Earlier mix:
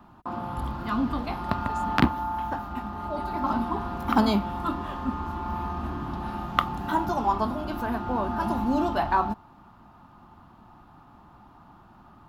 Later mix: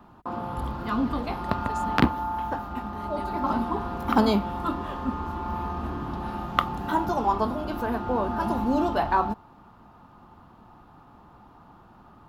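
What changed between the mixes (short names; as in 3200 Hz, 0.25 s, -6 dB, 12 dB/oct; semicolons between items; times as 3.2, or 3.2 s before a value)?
speech +4.5 dB; background: add bell 470 Hz +8 dB 0.4 oct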